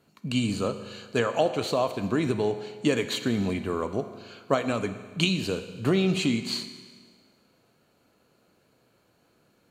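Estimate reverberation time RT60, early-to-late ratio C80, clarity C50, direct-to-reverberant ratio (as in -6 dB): 1.6 s, 12.0 dB, 11.0 dB, 9.5 dB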